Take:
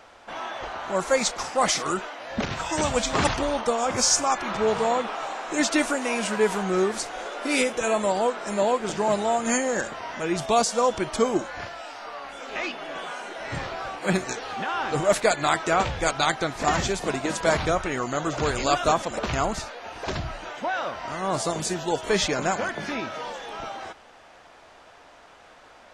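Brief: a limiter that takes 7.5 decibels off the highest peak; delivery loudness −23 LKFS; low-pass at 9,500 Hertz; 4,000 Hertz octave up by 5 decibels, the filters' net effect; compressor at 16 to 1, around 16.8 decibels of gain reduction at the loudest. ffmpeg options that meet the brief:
ffmpeg -i in.wav -af "lowpass=9500,equalizer=frequency=4000:width_type=o:gain=6.5,acompressor=threshold=-32dB:ratio=16,volume=14dB,alimiter=limit=-13dB:level=0:latency=1" out.wav

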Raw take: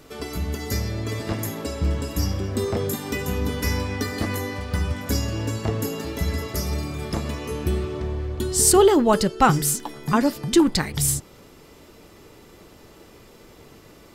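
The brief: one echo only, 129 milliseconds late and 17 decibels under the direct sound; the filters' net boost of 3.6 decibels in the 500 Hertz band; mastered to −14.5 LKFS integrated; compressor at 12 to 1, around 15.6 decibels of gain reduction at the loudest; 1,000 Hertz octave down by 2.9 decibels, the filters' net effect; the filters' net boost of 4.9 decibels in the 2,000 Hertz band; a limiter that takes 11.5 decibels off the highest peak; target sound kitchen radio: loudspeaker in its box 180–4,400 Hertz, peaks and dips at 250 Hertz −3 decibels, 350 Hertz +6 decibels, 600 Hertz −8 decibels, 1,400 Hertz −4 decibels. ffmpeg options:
ffmpeg -i in.wav -af "equalizer=frequency=500:width_type=o:gain=3.5,equalizer=frequency=1000:width_type=o:gain=-5,equalizer=frequency=2000:width_type=o:gain=8.5,acompressor=threshold=-25dB:ratio=12,alimiter=limit=-24dB:level=0:latency=1,highpass=180,equalizer=frequency=250:width_type=q:width=4:gain=-3,equalizer=frequency=350:width_type=q:width=4:gain=6,equalizer=frequency=600:width_type=q:width=4:gain=-8,equalizer=frequency=1400:width_type=q:width=4:gain=-4,lowpass=frequency=4400:width=0.5412,lowpass=frequency=4400:width=1.3066,aecho=1:1:129:0.141,volume=20dB" out.wav

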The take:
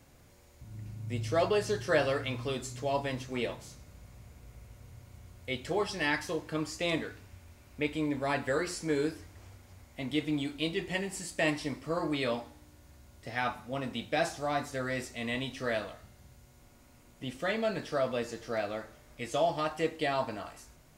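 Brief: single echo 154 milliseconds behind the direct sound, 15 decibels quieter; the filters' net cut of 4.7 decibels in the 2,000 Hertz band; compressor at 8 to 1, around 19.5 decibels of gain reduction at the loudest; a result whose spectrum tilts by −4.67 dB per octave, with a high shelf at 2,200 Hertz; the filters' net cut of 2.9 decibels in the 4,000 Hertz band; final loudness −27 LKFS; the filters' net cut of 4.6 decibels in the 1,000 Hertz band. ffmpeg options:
ffmpeg -i in.wav -af "equalizer=frequency=1000:width_type=o:gain=-6.5,equalizer=frequency=2000:width_type=o:gain=-4.5,highshelf=frequency=2200:gain=3.5,equalizer=frequency=4000:width_type=o:gain=-5,acompressor=threshold=-46dB:ratio=8,aecho=1:1:154:0.178,volume=23.5dB" out.wav

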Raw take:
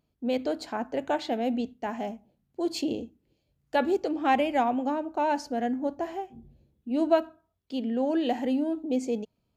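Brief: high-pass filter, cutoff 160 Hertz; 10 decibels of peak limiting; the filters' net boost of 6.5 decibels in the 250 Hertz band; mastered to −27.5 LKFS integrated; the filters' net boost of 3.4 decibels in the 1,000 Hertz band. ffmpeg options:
ffmpeg -i in.wav -af "highpass=160,equalizer=frequency=250:width_type=o:gain=8,equalizer=frequency=1000:width_type=o:gain=4,volume=-0.5dB,alimiter=limit=-18dB:level=0:latency=1" out.wav

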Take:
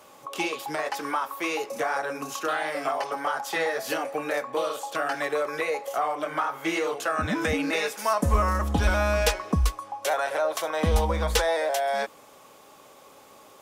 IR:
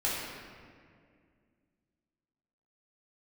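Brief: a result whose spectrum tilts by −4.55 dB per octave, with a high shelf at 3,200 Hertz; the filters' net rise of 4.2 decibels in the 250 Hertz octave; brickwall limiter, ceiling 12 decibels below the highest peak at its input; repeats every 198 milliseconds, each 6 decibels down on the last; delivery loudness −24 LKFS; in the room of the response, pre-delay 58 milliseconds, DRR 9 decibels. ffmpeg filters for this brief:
-filter_complex "[0:a]equalizer=frequency=250:width_type=o:gain=5.5,highshelf=frequency=3200:gain=-7.5,alimiter=limit=-20.5dB:level=0:latency=1,aecho=1:1:198|396|594|792|990|1188:0.501|0.251|0.125|0.0626|0.0313|0.0157,asplit=2[link_01][link_02];[1:a]atrim=start_sample=2205,adelay=58[link_03];[link_02][link_03]afir=irnorm=-1:irlink=0,volume=-17.5dB[link_04];[link_01][link_04]amix=inputs=2:normalize=0,volume=4.5dB"

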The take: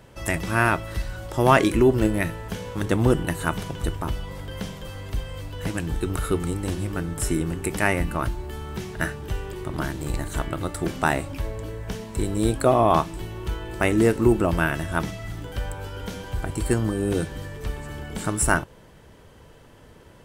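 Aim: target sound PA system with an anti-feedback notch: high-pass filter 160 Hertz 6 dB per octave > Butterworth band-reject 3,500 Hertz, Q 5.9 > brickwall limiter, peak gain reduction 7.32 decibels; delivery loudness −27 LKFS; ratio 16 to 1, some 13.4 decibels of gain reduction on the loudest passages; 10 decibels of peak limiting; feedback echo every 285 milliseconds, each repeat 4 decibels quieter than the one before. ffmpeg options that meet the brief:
ffmpeg -i in.wav -af "acompressor=threshold=-25dB:ratio=16,alimiter=limit=-22dB:level=0:latency=1,highpass=frequency=160:poles=1,asuperstop=centerf=3500:order=8:qfactor=5.9,aecho=1:1:285|570|855|1140|1425|1710|1995|2280|2565:0.631|0.398|0.25|0.158|0.0994|0.0626|0.0394|0.0249|0.0157,volume=8dB,alimiter=limit=-15.5dB:level=0:latency=1" out.wav

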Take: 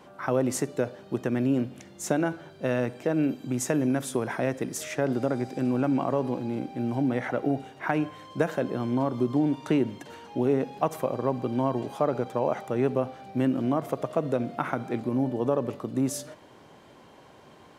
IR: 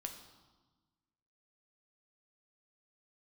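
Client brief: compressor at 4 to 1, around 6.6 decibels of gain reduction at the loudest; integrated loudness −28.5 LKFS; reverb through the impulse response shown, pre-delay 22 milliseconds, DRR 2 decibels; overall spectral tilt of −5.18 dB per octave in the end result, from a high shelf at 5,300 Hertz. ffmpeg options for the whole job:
-filter_complex "[0:a]highshelf=frequency=5300:gain=-7.5,acompressor=threshold=-28dB:ratio=4,asplit=2[link_01][link_02];[1:a]atrim=start_sample=2205,adelay=22[link_03];[link_02][link_03]afir=irnorm=-1:irlink=0,volume=0.5dB[link_04];[link_01][link_04]amix=inputs=2:normalize=0,volume=3dB"

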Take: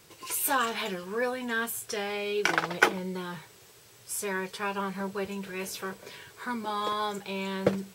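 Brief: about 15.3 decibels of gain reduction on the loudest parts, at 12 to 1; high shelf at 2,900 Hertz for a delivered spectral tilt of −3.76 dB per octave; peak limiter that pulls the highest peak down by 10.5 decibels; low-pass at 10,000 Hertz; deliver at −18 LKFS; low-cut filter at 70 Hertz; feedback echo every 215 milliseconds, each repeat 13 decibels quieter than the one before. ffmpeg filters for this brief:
ffmpeg -i in.wav -af "highpass=70,lowpass=10000,highshelf=frequency=2900:gain=-5,acompressor=threshold=-34dB:ratio=12,alimiter=level_in=6dB:limit=-24dB:level=0:latency=1,volume=-6dB,aecho=1:1:215|430|645:0.224|0.0493|0.0108,volume=22dB" out.wav

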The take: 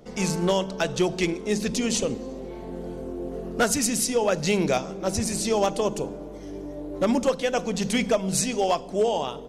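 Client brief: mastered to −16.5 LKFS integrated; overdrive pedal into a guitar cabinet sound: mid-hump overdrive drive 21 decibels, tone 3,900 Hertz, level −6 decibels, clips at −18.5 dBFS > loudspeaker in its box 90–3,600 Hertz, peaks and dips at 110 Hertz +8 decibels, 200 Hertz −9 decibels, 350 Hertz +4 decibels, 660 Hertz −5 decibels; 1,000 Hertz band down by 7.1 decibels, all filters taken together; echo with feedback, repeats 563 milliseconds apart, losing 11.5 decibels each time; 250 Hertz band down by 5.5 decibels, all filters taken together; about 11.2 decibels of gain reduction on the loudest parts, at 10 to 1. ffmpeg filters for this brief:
ffmpeg -i in.wav -filter_complex "[0:a]equalizer=frequency=250:width_type=o:gain=-5,equalizer=frequency=1000:width_type=o:gain=-7.5,acompressor=threshold=-32dB:ratio=10,aecho=1:1:563|1126|1689:0.266|0.0718|0.0194,asplit=2[link_01][link_02];[link_02]highpass=frequency=720:poles=1,volume=21dB,asoftclip=type=tanh:threshold=-18.5dB[link_03];[link_01][link_03]amix=inputs=2:normalize=0,lowpass=frequency=3900:poles=1,volume=-6dB,highpass=90,equalizer=frequency=110:width_type=q:width=4:gain=8,equalizer=frequency=200:width_type=q:width=4:gain=-9,equalizer=frequency=350:width_type=q:width=4:gain=4,equalizer=frequency=660:width_type=q:width=4:gain=-5,lowpass=frequency=3600:width=0.5412,lowpass=frequency=3600:width=1.3066,volume=14.5dB" out.wav

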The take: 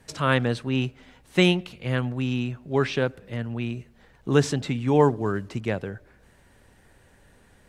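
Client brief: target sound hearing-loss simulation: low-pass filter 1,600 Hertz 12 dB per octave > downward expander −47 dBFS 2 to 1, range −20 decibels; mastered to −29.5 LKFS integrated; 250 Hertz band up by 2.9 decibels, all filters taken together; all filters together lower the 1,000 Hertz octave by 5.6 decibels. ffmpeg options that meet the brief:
ffmpeg -i in.wav -af "lowpass=1600,equalizer=frequency=250:width_type=o:gain=4,equalizer=frequency=1000:width_type=o:gain=-6.5,agate=range=-20dB:threshold=-47dB:ratio=2,volume=-5dB" out.wav

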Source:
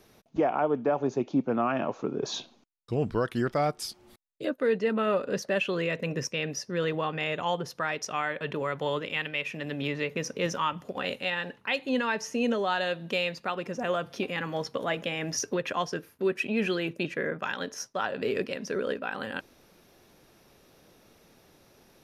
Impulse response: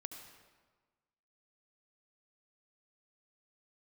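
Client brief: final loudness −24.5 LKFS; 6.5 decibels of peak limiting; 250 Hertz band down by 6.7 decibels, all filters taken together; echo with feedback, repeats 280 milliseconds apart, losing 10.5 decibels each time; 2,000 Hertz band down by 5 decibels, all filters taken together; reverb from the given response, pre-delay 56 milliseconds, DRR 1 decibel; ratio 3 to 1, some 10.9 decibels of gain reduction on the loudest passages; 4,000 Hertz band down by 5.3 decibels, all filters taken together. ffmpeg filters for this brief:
-filter_complex "[0:a]equalizer=frequency=250:width_type=o:gain=-9,equalizer=frequency=2000:width_type=o:gain=-5,equalizer=frequency=4000:width_type=o:gain=-5.5,acompressor=threshold=-39dB:ratio=3,alimiter=level_in=7.5dB:limit=-24dB:level=0:latency=1,volume=-7.5dB,aecho=1:1:280|560|840:0.299|0.0896|0.0269,asplit=2[link_01][link_02];[1:a]atrim=start_sample=2205,adelay=56[link_03];[link_02][link_03]afir=irnorm=-1:irlink=0,volume=2.5dB[link_04];[link_01][link_04]amix=inputs=2:normalize=0,volume=15dB"

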